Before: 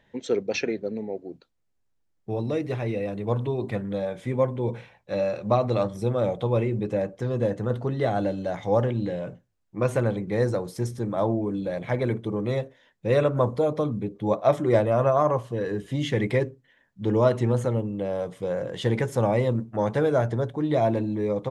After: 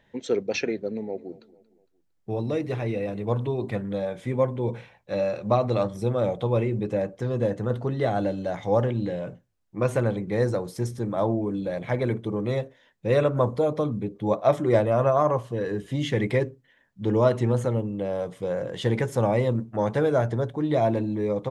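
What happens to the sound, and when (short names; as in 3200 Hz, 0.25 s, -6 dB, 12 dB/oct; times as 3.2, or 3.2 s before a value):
0.72–3.23 feedback echo 0.229 s, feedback 46%, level -20.5 dB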